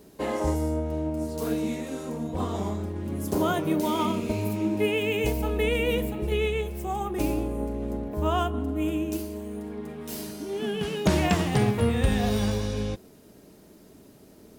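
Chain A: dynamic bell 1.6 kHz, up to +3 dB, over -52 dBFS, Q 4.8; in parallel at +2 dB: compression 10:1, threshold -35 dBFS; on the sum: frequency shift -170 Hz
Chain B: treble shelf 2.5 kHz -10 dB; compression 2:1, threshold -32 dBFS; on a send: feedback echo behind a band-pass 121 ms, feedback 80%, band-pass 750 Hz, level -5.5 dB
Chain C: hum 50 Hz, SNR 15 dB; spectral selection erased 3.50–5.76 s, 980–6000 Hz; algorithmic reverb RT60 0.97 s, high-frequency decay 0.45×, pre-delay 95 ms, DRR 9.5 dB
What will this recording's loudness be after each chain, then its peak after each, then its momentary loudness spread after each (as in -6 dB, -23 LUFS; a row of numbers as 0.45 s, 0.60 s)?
-26.0 LUFS, -32.5 LUFS, -27.5 LUFS; -7.5 dBFS, -16.5 dBFS, -10.0 dBFS; 7 LU, 7 LU, 12 LU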